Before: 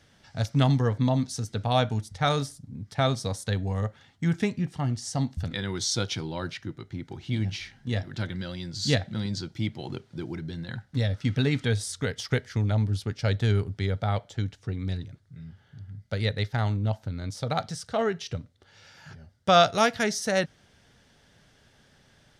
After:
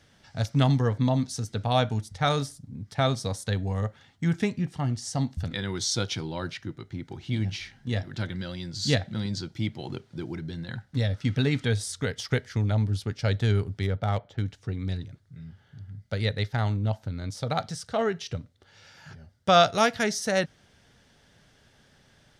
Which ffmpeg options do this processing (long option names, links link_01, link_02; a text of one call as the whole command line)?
ffmpeg -i in.wav -filter_complex "[0:a]asettb=1/sr,asplit=3[link_01][link_02][link_03];[link_01]atrim=end=13.824[link_04];[link_02]atrim=start=13.82:end=14.45,asetpts=PTS-STARTPTS,afade=type=in:duration=0.004:curve=qsin,afade=type=out:start_time=0.626:duration=0.004:curve=qsin,adynamicsmooth=sensitivity=5:basefreq=2800[link_05];[link_03]atrim=start=14.446[link_06];[link_04][link_05]acrossfade=duration=0.004:curve1=hsin:curve2=qsin[link_07];[link_07][link_06]acrossfade=duration=0.004:curve1=qsin:curve2=hsin" out.wav